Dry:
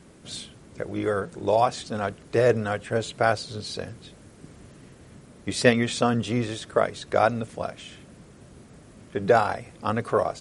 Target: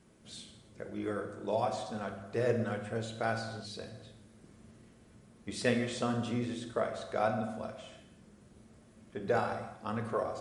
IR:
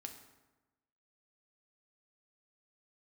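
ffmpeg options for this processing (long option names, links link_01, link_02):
-filter_complex "[1:a]atrim=start_sample=2205,afade=type=out:start_time=0.32:duration=0.01,atrim=end_sample=14553,asetrate=35721,aresample=44100[link_01];[0:a][link_01]afir=irnorm=-1:irlink=0,volume=-7.5dB"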